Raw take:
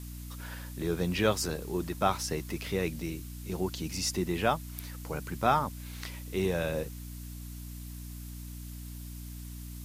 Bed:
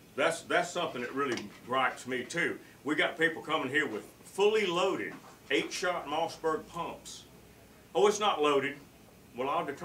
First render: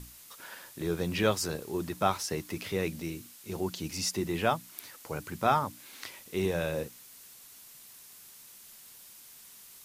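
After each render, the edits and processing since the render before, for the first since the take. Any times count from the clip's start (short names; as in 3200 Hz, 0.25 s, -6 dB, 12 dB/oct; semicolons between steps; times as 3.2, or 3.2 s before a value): notches 60/120/180/240/300 Hz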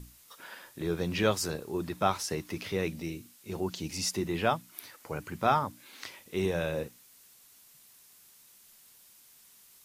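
noise print and reduce 6 dB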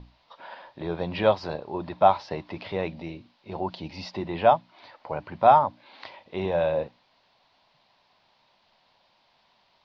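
steep low-pass 4600 Hz 48 dB/oct; band shelf 750 Hz +11.5 dB 1.1 oct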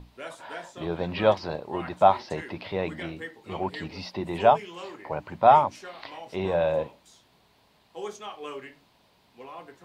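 add bed -11 dB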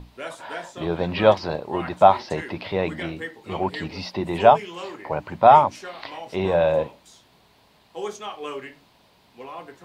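gain +5 dB; limiter -2 dBFS, peak gain reduction 2 dB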